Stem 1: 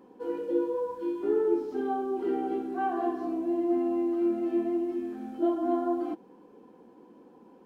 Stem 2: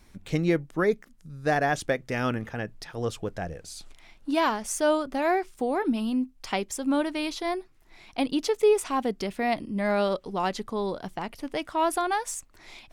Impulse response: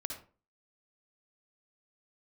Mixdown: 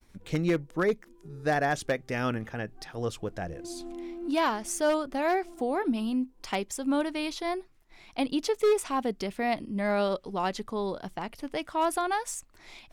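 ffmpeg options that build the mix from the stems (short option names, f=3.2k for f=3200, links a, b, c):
-filter_complex "[0:a]volume=-11dB,afade=t=in:st=3.24:d=0.29:silence=0.266073[a];[1:a]aeval=exprs='0.168*(abs(mod(val(0)/0.168+3,4)-2)-1)':c=same,volume=-2dB,asplit=2[b][c];[c]apad=whole_len=337628[d];[a][d]sidechaincompress=threshold=-44dB:ratio=8:attack=16:release=181[e];[e][b]amix=inputs=2:normalize=0,agate=range=-33dB:threshold=-54dB:ratio=3:detection=peak"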